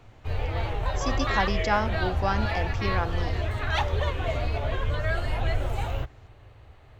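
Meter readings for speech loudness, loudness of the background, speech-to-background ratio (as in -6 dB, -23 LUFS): -30.5 LUFS, -29.0 LUFS, -1.5 dB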